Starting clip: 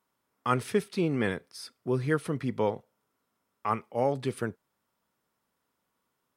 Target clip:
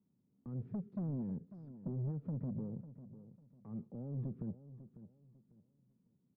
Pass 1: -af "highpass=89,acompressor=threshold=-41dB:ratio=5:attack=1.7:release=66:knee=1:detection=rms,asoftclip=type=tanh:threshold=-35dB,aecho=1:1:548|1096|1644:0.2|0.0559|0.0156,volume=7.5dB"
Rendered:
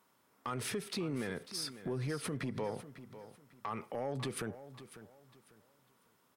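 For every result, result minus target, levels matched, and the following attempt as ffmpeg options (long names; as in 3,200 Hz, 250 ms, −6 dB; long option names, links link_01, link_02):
soft clipping: distortion −8 dB; 250 Hz band −3.0 dB
-af "highpass=89,acompressor=threshold=-41dB:ratio=5:attack=1.7:release=66:knee=1:detection=rms,asoftclip=type=tanh:threshold=-41.5dB,aecho=1:1:548|1096|1644:0.2|0.0559|0.0156,volume=7.5dB"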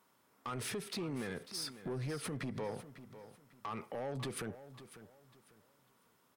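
250 Hz band −3.0 dB
-af "highpass=89,acompressor=threshold=-41dB:ratio=5:attack=1.7:release=66:knee=1:detection=rms,lowpass=frequency=190:width_type=q:width=2,asoftclip=type=tanh:threshold=-41.5dB,aecho=1:1:548|1096|1644:0.2|0.0559|0.0156,volume=7.5dB"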